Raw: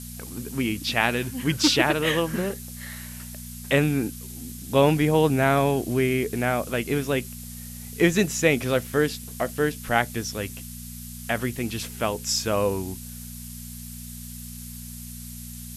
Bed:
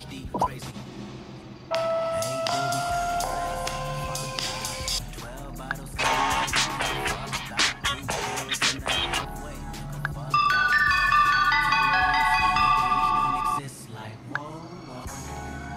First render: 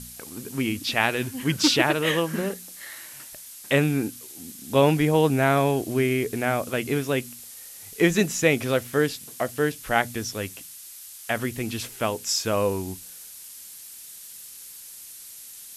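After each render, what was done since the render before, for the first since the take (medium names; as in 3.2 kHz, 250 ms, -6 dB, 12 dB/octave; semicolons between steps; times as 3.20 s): de-hum 60 Hz, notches 4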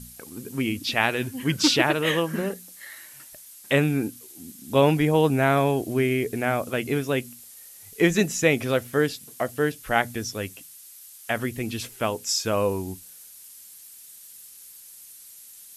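noise reduction 6 dB, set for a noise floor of -43 dBFS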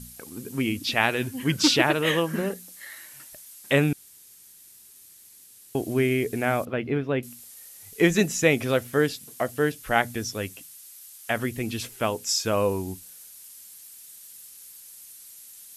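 3.93–5.75 s: room tone; 6.65–7.23 s: distance through air 370 m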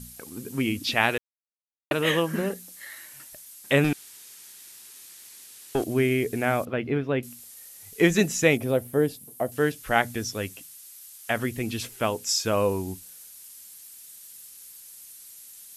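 1.18–1.91 s: mute; 3.84–5.84 s: overdrive pedal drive 16 dB, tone 4.1 kHz, clips at -14 dBFS; 8.57–9.52 s: high-order bell 2.9 kHz -10.5 dB 3 oct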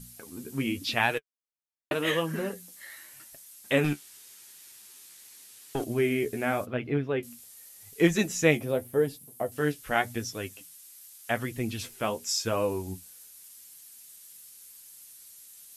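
flange 0.87 Hz, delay 6 ms, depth 8.7 ms, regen +36%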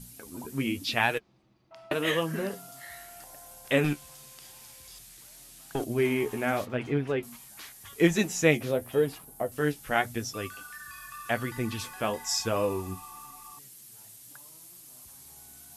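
add bed -24.5 dB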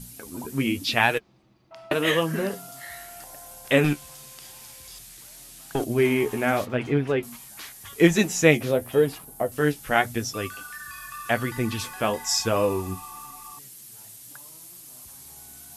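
trim +5 dB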